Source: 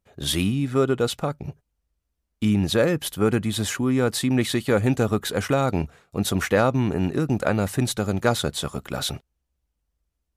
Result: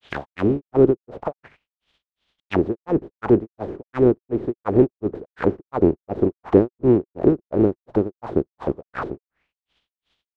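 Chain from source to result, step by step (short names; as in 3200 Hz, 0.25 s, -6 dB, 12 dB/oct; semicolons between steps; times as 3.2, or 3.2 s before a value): spectral contrast lowered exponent 0.28; grains 0.261 s, grains 2.8/s; envelope low-pass 370–3400 Hz down, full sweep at -29 dBFS; gain +8 dB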